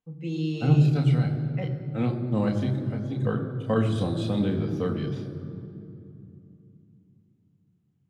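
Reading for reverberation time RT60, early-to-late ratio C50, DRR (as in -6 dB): 2.7 s, 8.5 dB, 1.5 dB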